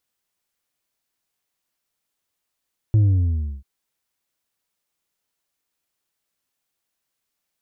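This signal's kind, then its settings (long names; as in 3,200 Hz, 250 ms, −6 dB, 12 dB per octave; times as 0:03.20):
bass drop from 110 Hz, over 0.69 s, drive 4 dB, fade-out 0.67 s, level −12.5 dB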